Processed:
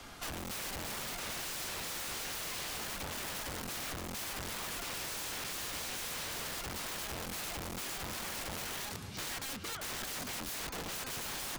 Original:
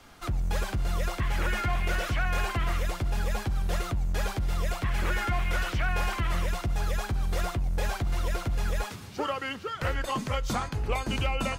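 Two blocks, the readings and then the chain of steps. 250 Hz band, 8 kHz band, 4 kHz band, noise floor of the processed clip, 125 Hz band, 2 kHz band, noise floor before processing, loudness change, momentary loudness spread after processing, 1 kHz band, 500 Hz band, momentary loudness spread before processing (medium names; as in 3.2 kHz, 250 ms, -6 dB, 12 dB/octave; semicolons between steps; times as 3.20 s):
-10.0 dB, +4.0 dB, -1.0 dB, -43 dBFS, -18.5 dB, -8.0 dB, -42 dBFS, -7.5 dB, 2 LU, -10.5 dB, -11.0 dB, 3 LU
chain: integer overflow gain 33 dB; three bands compressed up and down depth 40%; trim -2.5 dB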